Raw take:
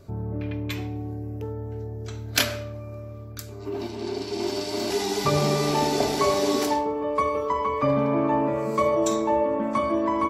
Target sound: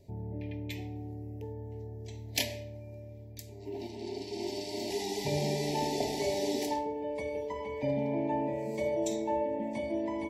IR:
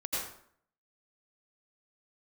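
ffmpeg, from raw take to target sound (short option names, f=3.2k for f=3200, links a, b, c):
-af "asuperstop=centerf=1300:order=12:qfactor=1.6,volume=-8.5dB"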